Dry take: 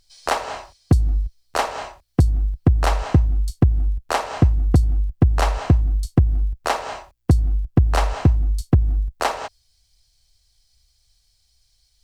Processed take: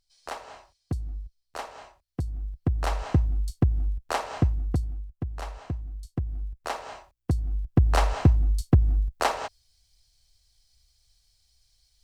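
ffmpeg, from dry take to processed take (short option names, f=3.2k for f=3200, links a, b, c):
-af "volume=7.5dB,afade=t=in:st=2.24:d=0.94:silence=0.375837,afade=t=out:st=4.33:d=0.74:silence=0.298538,afade=t=in:st=5.94:d=0.85:silence=0.446684,afade=t=in:st=7.44:d=0.47:silence=0.446684"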